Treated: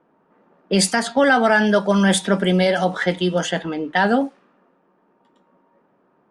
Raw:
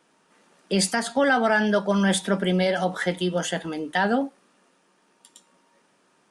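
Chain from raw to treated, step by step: level-controlled noise filter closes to 1 kHz, open at -18.5 dBFS; trim +5 dB

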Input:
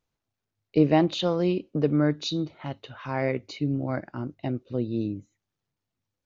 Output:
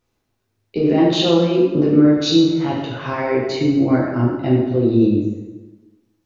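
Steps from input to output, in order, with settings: peaking EQ 370 Hz +7 dB 0.46 oct; peak limiter -18.5 dBFS, peak gain reduction 12 dB; plate-style reverb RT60 1.2 s, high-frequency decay 0.75×, DRR -5 dB; trim +6 dB

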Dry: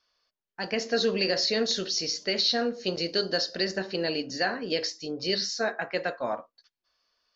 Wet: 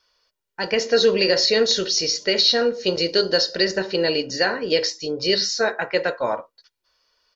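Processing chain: comb 2.1 ms, depth 41%; trim +7 dB

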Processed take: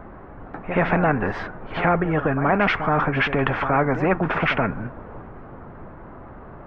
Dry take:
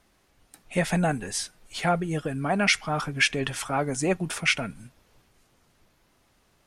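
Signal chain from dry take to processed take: low-pass 1.4 kHz 24 dB/octave; in parallel at -2 dB: peak limiter -24 dBFS, peak gain reduction 10.5 dB; on the sum: pre-echo 75 ms -16.5 dB; spectrum-flattening compressor 2:1; trim +7.5 dB

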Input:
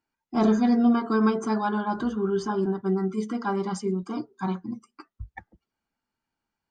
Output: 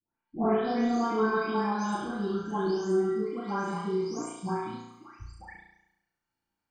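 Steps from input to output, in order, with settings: delay that grows with frequency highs late, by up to 499 ms; flutter echo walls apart 5.9 m, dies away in 0.84 s; trim -3.5 dB

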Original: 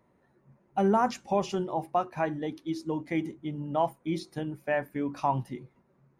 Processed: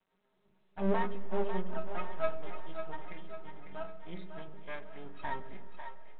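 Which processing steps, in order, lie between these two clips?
high-pass 130 Hz 6 dB/octave; 0.99–2.42 s: treble shelf 2.4 kHz -9.5 dB; 3.08–3.87 s: compression 2:1, threshold -37 dBFS, peak gain reduction 9 dB; inharmonic resonator 190 Hz, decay 0.32 s, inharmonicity 0.03; half-wave rectifier; two-band feedback delay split 460 Hz, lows 104 ms, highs 548 ms, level -8 dB; algorithmic reverb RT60 3.6 s, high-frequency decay 0.7×, pre-delay 75 ms, DRR 17 dB; trim +8 dB; G.726 40 kbps 8 kHz

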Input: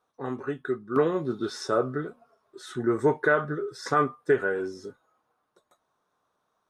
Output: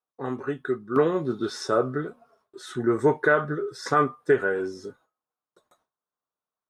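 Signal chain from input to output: gate with hold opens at -56 dBFS; trim +2 dB

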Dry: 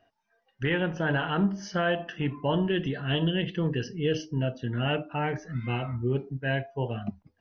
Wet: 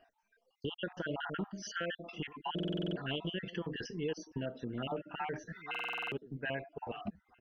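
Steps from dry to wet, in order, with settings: random holes in the spectrogram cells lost 46%; peaking EQ 110 Hz -11.5 dB 1.1 oct; compression 2.5:1, threshold -39 dBFS, peak gain reduction 10.5 dB; echo from a far wall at 280 m, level -19 dB; buffer glitch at 2.54/5.70 s, samples 2048, times 8; trim +1 dB

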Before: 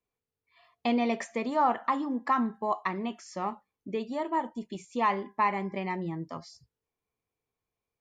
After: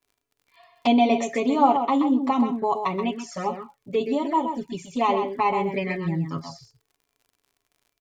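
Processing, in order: comb 7.2 ms, depth 73%; echo from a far wall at 22 m, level -7 dB; touch-sensitive flanger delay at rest 3 ms, full sweep at -26.5 dBFS; crackle 75 per s -56 dBFS; trim +7.5 dB

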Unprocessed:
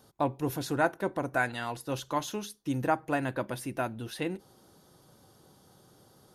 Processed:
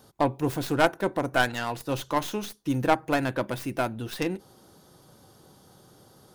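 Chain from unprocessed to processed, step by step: tracing distortion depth 0.18 ms; trim +4.5 dB

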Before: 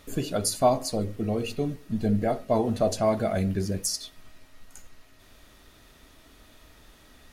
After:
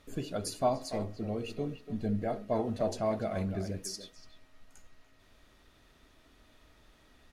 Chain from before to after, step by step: treble shelf 8.3 kHz -10 dB; speakerphone echo 290 ms, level -9 dB; trim -7.5 dB

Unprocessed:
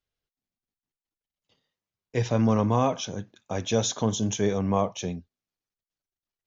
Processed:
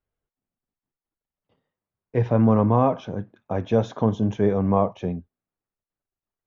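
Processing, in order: low-pass 1.4 kHz 12 dB/octave; trim +4.5 dB

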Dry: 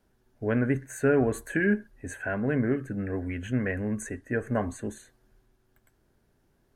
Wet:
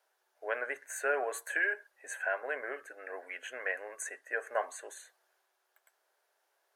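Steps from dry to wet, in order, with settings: inverse Chebyshev high-pass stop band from 220 Hz, stop band 50 dB

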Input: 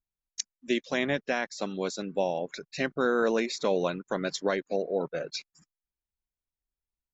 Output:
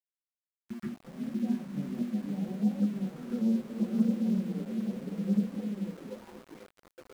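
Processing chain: backward echo that repeats 348 ms, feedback 48%, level 0 dB; peak limiter -18.5 dBFS, peak gain reduction 9 dB; auto-wah 210–3700 Hz, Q 13, down, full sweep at -30.5 dBFS; peaking EQ 85 Hz +15 dB 1 oct; repeats whose band climbs or falls 501 ms, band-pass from 260 Hz, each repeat 0.7 oct, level -1 dB; reverberation RT60 0.30 s, pre-delay 122 ms, DRR -9 dB; dynamic bell 320 Hz, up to -5 dB, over -52 dBFS, Q 5.8; flange 0.72 Hz, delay 3.4 ms, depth 5.5 ms, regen +17%; small samples zeroed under -48 dBFS; upward expansion 1.5:1, over -44 dBFS; trim +8 dB

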